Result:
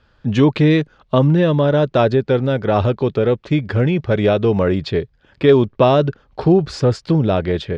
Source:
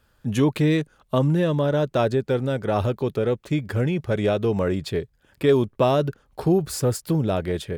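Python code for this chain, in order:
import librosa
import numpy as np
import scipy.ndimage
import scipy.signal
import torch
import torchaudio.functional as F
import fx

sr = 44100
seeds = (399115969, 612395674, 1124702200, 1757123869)

y = scipy.signal.sosfilt(scipy.signal.butter(4, 5000.0, 'lowpass', fs=sr, output='sos'), x)
y = y * librosa.db_to_amplitude(6.5)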